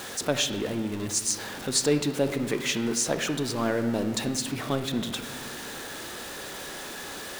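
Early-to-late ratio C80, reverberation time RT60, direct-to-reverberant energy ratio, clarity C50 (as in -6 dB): 11.0 dB, 1.5 s, 8.0 dB, 9.0 dB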